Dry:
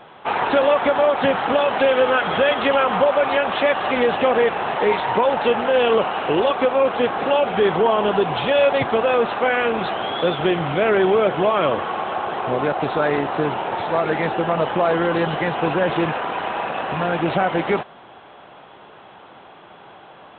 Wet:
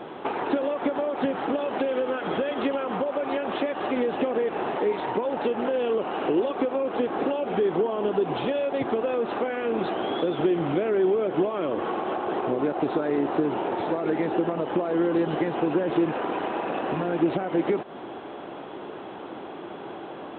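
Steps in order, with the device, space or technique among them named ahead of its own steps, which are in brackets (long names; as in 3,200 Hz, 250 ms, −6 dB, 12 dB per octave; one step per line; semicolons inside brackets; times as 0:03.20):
serial compression, peaks first (downward compressor, threshold −25 dBFS, peak gain reduction 12.5 dB; downward compressor 2.5 to 1, threshold −32 dBFS, peak gain reduction 6.5 dB)
parametric band 320 Hz +14.5 dB 1.4 octaves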